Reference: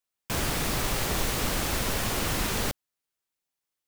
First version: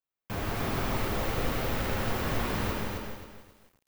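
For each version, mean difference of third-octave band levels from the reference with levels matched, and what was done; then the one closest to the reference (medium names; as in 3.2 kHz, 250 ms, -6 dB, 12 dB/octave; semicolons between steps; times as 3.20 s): 5.0 dB: peaking EQ 8.2 kHz -14 dB 2.3 oct; flange 1.3 Hz, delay 7.1 ms, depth 3 ms, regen +50%; gated-style reverb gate 220 ms flat, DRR 1 dB; bit-crushed delay 266 ms, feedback 35%, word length 10-bit, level -3 dB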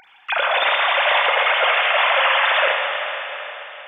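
26.5 dB: formants replaced by sine waves; bass shelf 400 Hz -9.5 dB; upward compressor, threshold -39 dBFS; Schroeder reverb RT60 3.8 s, combs from 32 ms, DRR 0 dB; trim +8.5 dB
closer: first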